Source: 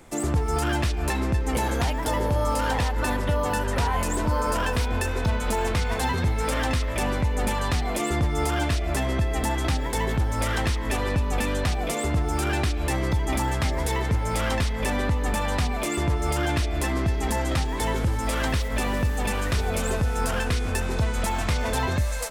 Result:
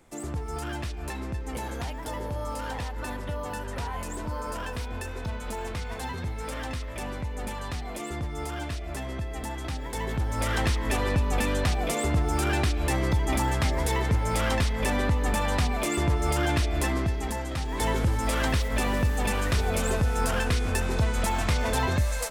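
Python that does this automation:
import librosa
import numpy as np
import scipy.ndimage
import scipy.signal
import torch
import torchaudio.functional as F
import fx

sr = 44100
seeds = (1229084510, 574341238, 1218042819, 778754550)

y = fx.gain(x, sr, db=fx.line((9.67, -9.0), (10.63, -0.5), (16.86, -0.5), (17.52, -8.0), (17.83, -0.5)))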